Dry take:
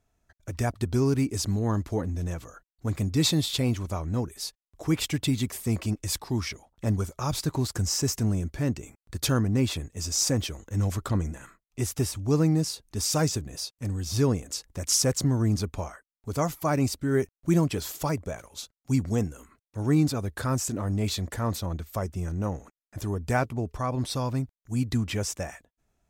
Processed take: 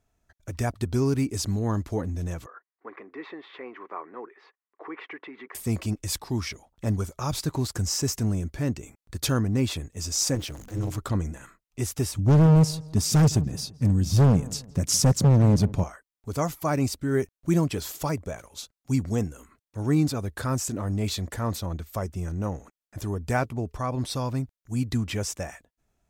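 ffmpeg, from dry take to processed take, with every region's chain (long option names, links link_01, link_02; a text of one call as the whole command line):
ffmpeg -i in.wav -filter_complex "[0:a]asettb=1/sr,asplit=3[link_01][link_02][link_03];[link_01]atrim=end=2.464[link_04];[link_02]atrim=start=2.46:end=5.55,asetpts=PTS-STARTPTS,afade=type=in:duration=0.004:curve=qsin,afade=type=out:start_time=3.086:duration=0.004:curve=qsin,acompressor=threshold=-27dB:ratio=3:attack=3.2:release=140:knee=1:detection=peak,highpass=frequency=380:width=0.5412,highpass=frequency=380:width=1.3066,equalizer=frequency=390:width_type=q:width=4:gain=4,equalizer=frequency=600:width_type=q:width=4:gain=-8,equalizer=frequency=1100:width_type=q:width=4:gain=7,equalizer=frequency=1900:width_type=q:width=4:gain=7,lowpass=frequency=2100:width=0.5412,lowpass=frequency=2100:width=1.3066[link_05];[link_03]atrim=start=5.546[link_06];[link_04][link_05]acrossfade=duration=0.004:curve1=hsin:curve2=qsin[link_07];[link_07][link_06]acrossfade=duration=0.004:curve1=qsin:curve2=hsin,asettb=1/sr,asplit=3[link_08][link_09][link_10];[link_08]atrim=end=10.354[link_11];[link_09]atrim=start=10.35:end=10.98,asetpts=PTS-STARTPTS,afade=type=in:duration=0.004:curve=qsin,afade=type=out:start_time=0.626:duration=0.004:curve=qsin,aeval=exprs='val(0)+0.5*0.0133*sgn(val(0))':channel_layout=same,tremolo=f=220:d=0.889[link_12];[link_10]atrim=start=10.976[link_13];[link_11][link_12]acrossfade=duration=0.004:curve1=hsin:curve2=qsin[link_14];[link_14][link_13]acrossfade=duration=0.004:curve1=qsin:curve2=hsin,asettb=1/sr,asplit=3[link_15][link_16][link_17];[link_15]atrim=end=12.184[link_18];[link_16]atrim=start=12.18:end=15.84,asetpts=PTS-STARTPTS,afade=type=in:duration=0.004:curve=qsin,afade=type=out:start_time=3.656:duration=0.004:curve=qsin,equalizer=frequency=160:width_type=o:width=1.8:gain=14,asoftclip=type=hard:threshold=-14.5dB,asplit=2[link_19][link_20];[link_20]adelay=166,lowpass=frequency=1400:poles=1,volume=-18.5dB,asplit=2[link_21][link_22];[link_22]adelay=166,lowpass=frequency=1400:poles=1,volume=0.38,asplit=2[link_23][link_24];[link_24]adelay=166,lowpass=frequency=1400:poles=1,volume=0.38[link_25];[link_19][link_21][link_23][link_25]amix=inputs=4:normalize=0,atrim=end_sample=161406[link_26];[link_17]atrim=start=15.836[link_27];[link_18][link_26]acrossfade=duration=0.004:curve1=hsin:curve2=qsin[link_28];[link_28][link_27]acrossfade=duration=0.004:curve1=qsin:curve2=hsin" out.wav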